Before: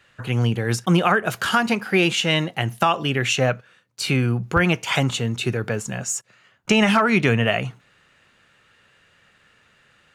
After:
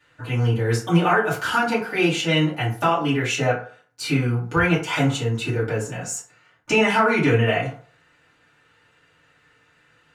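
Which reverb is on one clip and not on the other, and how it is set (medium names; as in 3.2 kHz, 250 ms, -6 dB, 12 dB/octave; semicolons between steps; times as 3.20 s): FDN reverb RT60 0.46 s, low-frequency decay 0.8×, high-frequency decay 0.5×, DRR -9 dB; trim -10 dB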